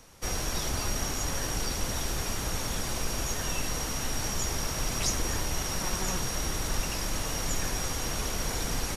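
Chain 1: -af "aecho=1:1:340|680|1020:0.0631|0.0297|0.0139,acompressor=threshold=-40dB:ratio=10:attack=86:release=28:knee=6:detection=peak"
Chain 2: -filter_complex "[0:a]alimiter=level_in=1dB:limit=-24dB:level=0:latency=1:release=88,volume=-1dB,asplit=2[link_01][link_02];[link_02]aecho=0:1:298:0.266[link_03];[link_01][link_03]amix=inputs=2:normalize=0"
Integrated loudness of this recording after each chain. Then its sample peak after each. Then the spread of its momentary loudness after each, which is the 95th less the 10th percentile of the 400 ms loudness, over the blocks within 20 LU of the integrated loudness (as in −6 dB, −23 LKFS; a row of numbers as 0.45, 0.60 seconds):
−35.5, −34.5 LKFS; −21.0, −23.0 dBFS; 1, 1 LU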